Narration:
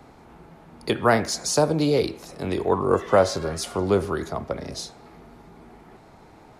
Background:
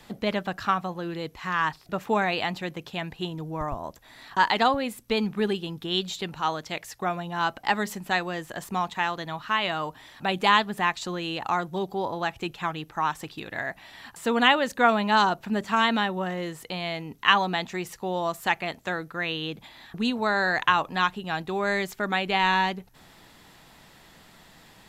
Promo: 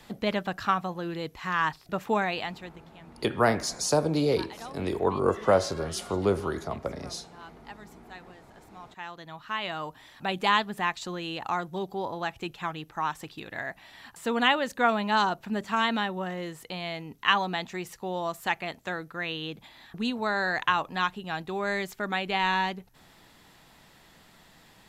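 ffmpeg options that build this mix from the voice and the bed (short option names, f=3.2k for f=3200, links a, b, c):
-filter_complex "[0:a]adelay=2350,volume=-4dB[a];[1:a]volume=16.5dB,afade=t=out:st=2.07:d=0.81:silence=0.1,afade=t=in:st=8.77:d=1.24:silence=0.133352[b];[a][b]amix=inputs=2:normalize=0"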